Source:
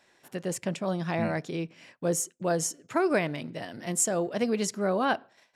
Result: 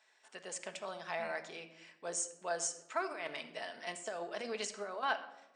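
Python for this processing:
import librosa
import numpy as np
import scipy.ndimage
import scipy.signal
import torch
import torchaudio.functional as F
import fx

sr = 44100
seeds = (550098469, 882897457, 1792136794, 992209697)

y = scipy.signal.sosfilt(scipy.signal.butter(2, 710.0, 'highpass', fs=sr, output='sos'), x)
y = fx.over_compress(y, sr, threshold_db=-36.0, ratio=-1.0, at=(3.12, 5.03))
y = fx.brickwall_lowpass(y, sr, high_hz=9400.0)
y = fx.room_shoebox(y, sr, seeds[0], volume_m3=3600.0, walls='furnished', distance_m=1.5)
y = y * librosa.db_to_amplitude(-6.0)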